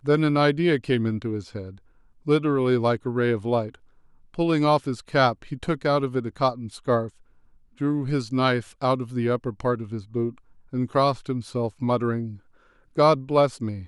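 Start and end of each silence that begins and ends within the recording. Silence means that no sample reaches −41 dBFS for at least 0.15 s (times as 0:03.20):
0:01.78–0:02.26
0:03.75–0:04.34
0:07.09–0:07.80
0:10.38–0:10.73
0:12.37–0:12.96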